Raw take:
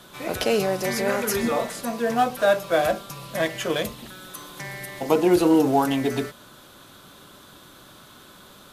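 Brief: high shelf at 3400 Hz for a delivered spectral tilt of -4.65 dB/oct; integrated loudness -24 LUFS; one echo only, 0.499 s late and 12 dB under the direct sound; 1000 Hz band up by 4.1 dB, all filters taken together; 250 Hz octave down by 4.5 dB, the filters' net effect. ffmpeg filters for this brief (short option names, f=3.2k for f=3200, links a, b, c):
-af "equalizer=f=250:t=o:g=-7,equalizer=f=1k:t=o:g=7,highshelf=f=3.4k:g=-5.5,aecho=1:1:499:0.251,volume=-1dB"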